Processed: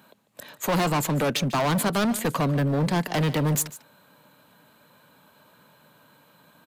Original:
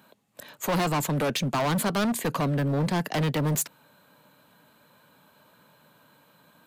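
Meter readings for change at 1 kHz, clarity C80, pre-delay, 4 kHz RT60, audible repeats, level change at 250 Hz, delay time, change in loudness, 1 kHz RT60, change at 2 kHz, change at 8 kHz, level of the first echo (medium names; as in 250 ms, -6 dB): +2.0 dB, no reverb, no reverb, no reverb, 1, +2.0 dB, 147 ms, +2.0 dB, no reverb, +2.0 dB, +2.0 dB, -17.0 dB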